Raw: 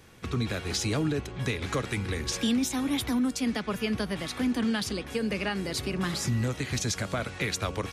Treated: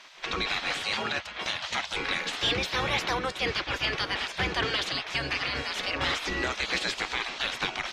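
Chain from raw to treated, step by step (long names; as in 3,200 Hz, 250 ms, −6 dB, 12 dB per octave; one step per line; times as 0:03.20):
0:00.80–0:01.95: high-pass filter 210 Hz 12 dB per octave
gate on every frequency bin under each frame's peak −15 dB weak
high-shelf EQ 2,200 Hz +10 dB
sine wavefolder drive 6 dB, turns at −15.5 dBFS
high-frequency loss of the air 200 metres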